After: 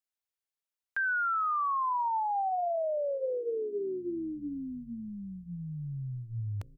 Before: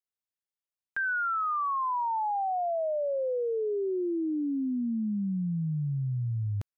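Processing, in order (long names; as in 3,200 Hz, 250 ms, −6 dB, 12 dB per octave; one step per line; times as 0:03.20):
parametric band 200 Hz −10.5 dB 1.4 octaves
mains-hum notches 60/120/180/240/300/360/420/480/540 Hz
echo with shifted repeats 312 ms, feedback 55%, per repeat −140 Hz, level −21 dB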